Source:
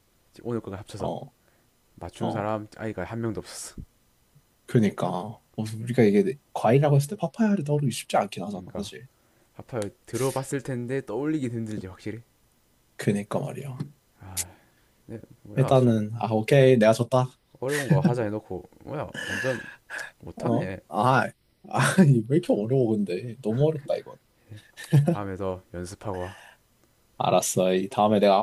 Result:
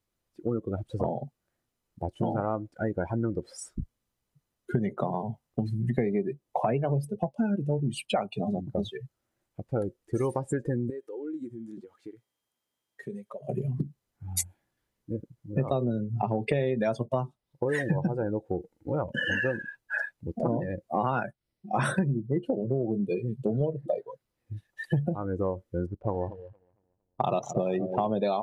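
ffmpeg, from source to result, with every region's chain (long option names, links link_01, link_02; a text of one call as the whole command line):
ffmpeg -i in.wav -filter_complex "[0:a]asettb=1/sr,asplit=3[link_01][link_02][link_03];[link_01]atrim=end=10.904[link_04];[link_02]atrim=start=10.9:end=13.49,asetpts=PTS-STARTPTS,afade=type=in:duration=0.004:curve=qsin,afade=type=out:start_time=2.586:duration=0.004:curve=qsin,highpass=frequency=450:poles=1,acompressor=threshold=-41dB:ratio=3:attack=3.2:release=140:knee=1:detection=peak,aeval=exprs='val(0)+0.000224*sin(2*PI*3200*n/s)':channel_layout=same[link_05];[link_03]atrim=start=13.486[link_06];[link_04][link_05]acrossfade=duration=0.004:curve1=hsin:curve2=qsin[link_07];[link_07][link_06]acrossfade=duration=0.004:curve1=qsin:curve2=hsin,asettb=1/sr,asplit=3[link_08][link_09][link_10];[link_08]atrim=end=25.864[link_11];[link_09]atrim=start=25.86:end=28.07,asetpts=PTS-STARTPTS,afade=type=in:duration=0.004:curve=qsin,afade=type=out:start_time=2.206:duration=0.004:curve=qsin,asplit=2[link_12][link_13];[link_13]adelay=229,lowpass=frequency=4100:poles=1,volume=-12dB,asplit=2[link_14][link_15];[link_15]adelay=229,lowpass=frequency=4100:poles=1,volume=0.51,asplit=2[link_16][link_17];[link_17]adelay=229,lowpass=frequency=4100:poles=1,volume=0.51,asplit=2[link_18][link_19];[link_19]adelay=229,lowpass=frequency=4100:poles=1,volume=0.51,asplit=2[link_20][link_21];[link_21]adelay=229,lowpass=frequency=4100:poles=1,volume=0.51[link_22];[link_12][link_14][link_16][link_18][link_20][link_22]amix=inputs=6:normalize=0,atrim=end_sample=97461,adynamicsmooth=sensitivity=5:basefreq=500[link_23];[link_10]atrim=start=28.066[link_24];[link_11][link_23]acrossfade=duration=0.004:curve1=hsin:curve2=qsin[link_25];[link_25][link_24]acrossfade=duration=0.004:curve1=qsin:curve2=hsin,afftdn=noise_reduction=25:noise_floor=-32,acompressor=threshold=-32dB:ratio=6,volume=7dB" out.wav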